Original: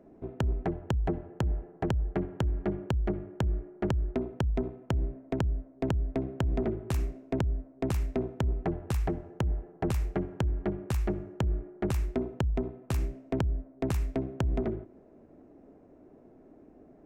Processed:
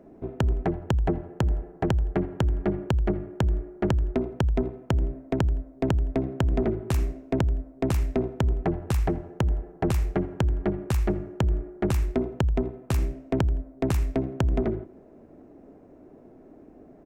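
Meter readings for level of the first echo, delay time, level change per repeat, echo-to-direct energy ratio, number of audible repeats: -22.0 dB, 83 ms, -12.0 dB, -21.5 dB, 2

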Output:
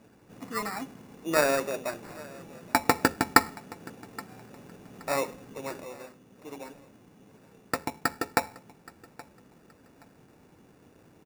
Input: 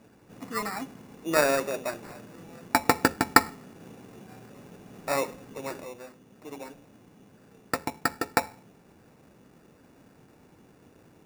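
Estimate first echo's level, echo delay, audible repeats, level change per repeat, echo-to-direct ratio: -21.5 dB, 823 ms, 2, -11.5 dB, -21.0 dB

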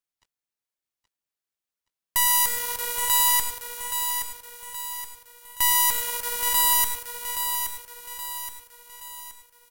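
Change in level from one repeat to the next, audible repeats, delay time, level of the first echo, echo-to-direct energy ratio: -6.5 dB, 4, 823 ms, -7.0 dB, -6.0 dB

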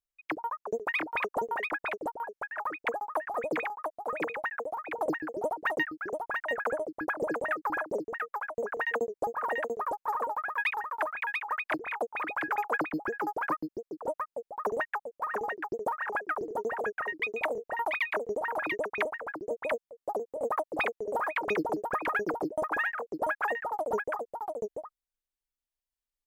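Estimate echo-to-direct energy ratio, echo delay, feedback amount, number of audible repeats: -3.5 dB, 689 ms, no regular repeats, 1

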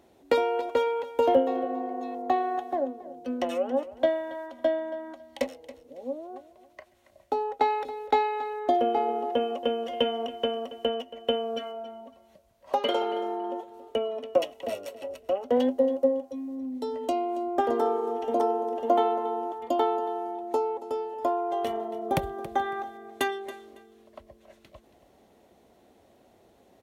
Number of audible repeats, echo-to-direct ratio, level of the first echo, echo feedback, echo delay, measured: 2, -16.0 dB, -16.0 dB, 22%, 277 ms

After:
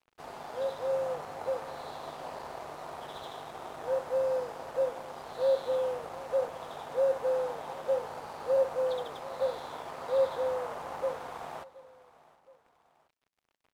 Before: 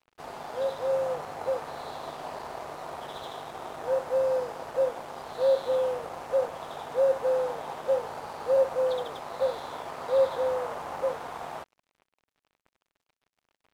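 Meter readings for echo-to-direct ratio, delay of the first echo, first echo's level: -19.0 dB, 721 ms, -20.0 dB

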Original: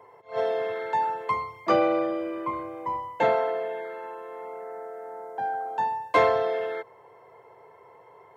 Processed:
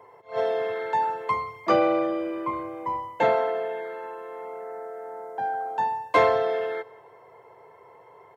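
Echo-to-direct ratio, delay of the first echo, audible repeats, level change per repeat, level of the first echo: -22.0 dB, 173 ms, 2, -5.5 dB, -23.0 dB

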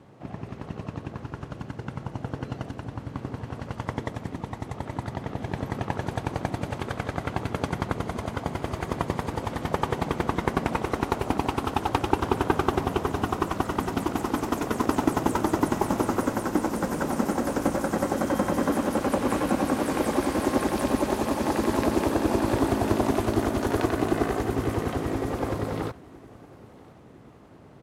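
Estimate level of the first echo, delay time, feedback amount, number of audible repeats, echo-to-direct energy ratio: -23.5 dB, 1012 ms, 50%, 2, -22.5 dB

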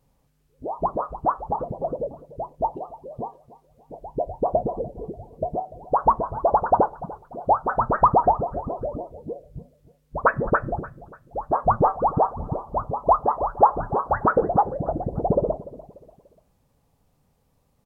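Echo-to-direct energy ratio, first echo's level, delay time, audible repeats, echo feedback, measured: -17.5 dB, -18.0 dB, 293 ms, 3, 38%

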